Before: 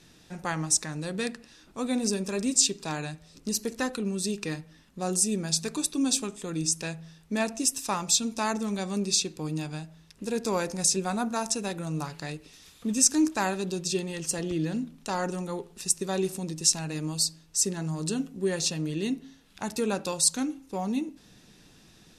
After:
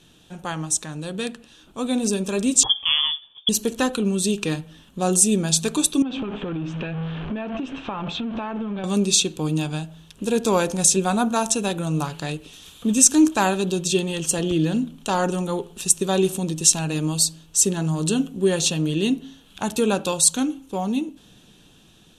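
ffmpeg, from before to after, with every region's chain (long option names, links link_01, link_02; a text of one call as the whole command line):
ffmpeg -i in.wav -filter_complex "[0:a]asettb=1/sr,asplit=3[link_01][link_02][link_03];[link_01]atrim=end=2.634[link_04];[link_02]atrim=start=2.63:end=3.49,asetpts=PTS-STARTPTS,afade=type=in:duration=0.004:curve=qsin,afade=type=out:start_time=0.856:duration=0.004:curve=qsin,agate=range=-33dB:threshold=-48dB:ratio=3:release=100:detection=peak,lowpass=frequency=3100:width_type=q:width=0.5098,lowpass=frequency=3100:width_type=q:width=0.6013,lowpass=frequency=3100:width_type=q:width=0.9,lowpass=frequency=3100:width_type=q:width=2.563,afreqshift=-3600[link_05];[link_03]atrim=start=3.486[link_06];[link_04][link_05]acrossfade=duration=0.004:curve1=hsin:curve2=qsin[link_07];[link_07][link_06]acrossfade=duration=0.004:curve1=qsin:curve2=hsin,asettb=1/sr,asplit=3[link_08][link_09][link_10];[link_08]atrim=end=6.024[link_11];[link_09]atrim=start=6.02:end=8.84,asetpts=PTS-STARTPTS,afade=type=in:duration=0.004:curve=qsin,afade=type=out:start_time=2.816:duration=0.004:curve=qsin,aeval=exprs='val(0)+0.5*0.0211*sgn(val(0))':channel_layout=same,lowpass=frequency=2600:width=0.5412,lowpass=frequency=2600:width=1.3066,acompressor=threshold=-33dB:ratio=16:attack=3.2:release=140:knee=1:detection=peak[link_12];[link_10]atrim=start=8.836[link_13];[link_11][link_12]acrossfade=duration=0.004:curve1=hsin:curve2=qsin[link_14];[link_14][link_13]acrossfade=duration=0.004:curve1=qsin:curve2=hsin,equalizer=frequency=2000:width_type=o:width=0.33:gain=-9,equalizer=frequency=3150:width_type=o:width=0.33:gain=9,equalizer=frequency=5000:width_type=o:width=0.33:gain=-9,dynaudnorm=framelen=470:gausssize=9:maxgain=7.5dB,volume=2dB" out.wav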